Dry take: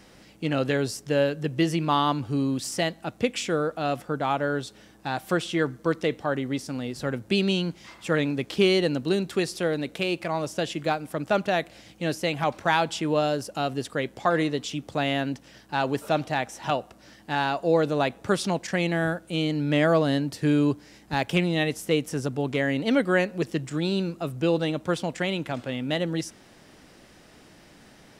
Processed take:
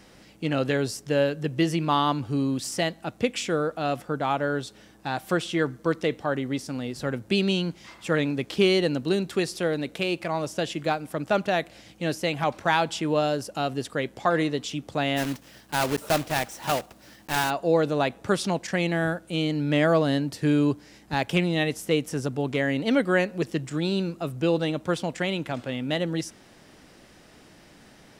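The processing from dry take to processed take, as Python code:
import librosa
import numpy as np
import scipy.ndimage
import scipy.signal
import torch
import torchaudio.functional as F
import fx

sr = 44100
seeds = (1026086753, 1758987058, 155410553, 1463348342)

y = fx.block_float(x, sr, bits=3, at=(15.16, 17.49), fade=0.02)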